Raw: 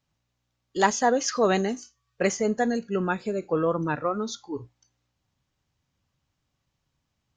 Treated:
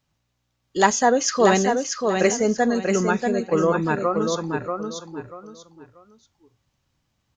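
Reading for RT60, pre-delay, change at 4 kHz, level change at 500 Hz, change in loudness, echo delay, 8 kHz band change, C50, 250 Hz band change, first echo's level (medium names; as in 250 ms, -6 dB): no reverb, no reverb, +5.5 dB, +5.5 dB, +4.5 dB, 637 ms, +7.0 dB, no reverb, +5.5 dB, -5.0 dB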